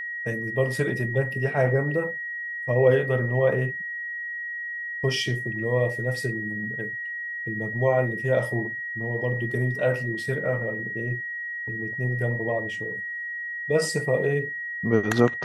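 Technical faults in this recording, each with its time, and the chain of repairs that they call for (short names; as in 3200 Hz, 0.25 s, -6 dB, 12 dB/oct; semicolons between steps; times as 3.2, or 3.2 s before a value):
tone 1900 Hz -30 dBFS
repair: notch 1900 Hz, Q 30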